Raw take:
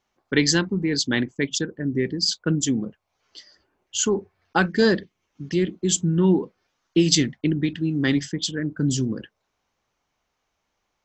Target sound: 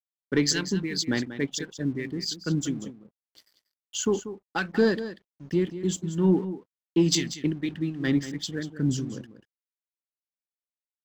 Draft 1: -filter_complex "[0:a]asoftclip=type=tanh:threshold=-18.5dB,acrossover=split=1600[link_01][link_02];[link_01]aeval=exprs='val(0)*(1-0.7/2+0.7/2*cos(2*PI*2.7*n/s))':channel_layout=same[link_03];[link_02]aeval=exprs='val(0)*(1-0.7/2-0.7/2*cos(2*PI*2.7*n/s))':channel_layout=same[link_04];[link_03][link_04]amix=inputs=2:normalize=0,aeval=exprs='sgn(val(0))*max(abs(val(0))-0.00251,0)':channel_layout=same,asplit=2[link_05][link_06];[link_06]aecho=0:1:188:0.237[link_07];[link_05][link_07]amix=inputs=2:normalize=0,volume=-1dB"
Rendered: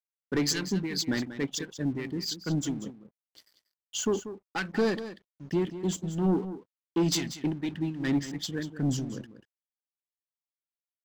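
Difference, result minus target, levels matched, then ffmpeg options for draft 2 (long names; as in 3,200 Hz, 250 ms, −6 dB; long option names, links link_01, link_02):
soft clipping: distortion +12 dB
-filter_complex "[0:a]asoftclip=type=tanh:threshold=-8.5dB,acrossover=split=1600[link_01][link_02];[link_01]aeval=exprs='val(0)*(1-0.7/2+0.7/2*cos(2*PI*2.7*n/s))':channel_layout=same[link_03];[link_02]aeval=exprs='val(0)*(1-0.7/2-0.7/2*cos(2*PI*2.7*n/s))':channel_layout=same[link_04];[link_03][link_04]amix=inputs=2:normalize=0,aeval=exprs='sgn(val(0))*max(abs(val(0))-0.00251,0)':channel_layout=same,asplit=2[link_05][link_06];[link_06]aecho=0:1:188:0.237[link_07];[link_05][link_07]amix=inputs=2:normalize=0,volume=-1dB"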